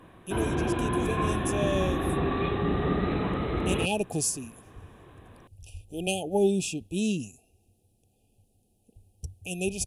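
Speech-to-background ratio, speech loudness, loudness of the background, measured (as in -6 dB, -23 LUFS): -2.0 dB, -31.0 LUFS, -29.0 LUFS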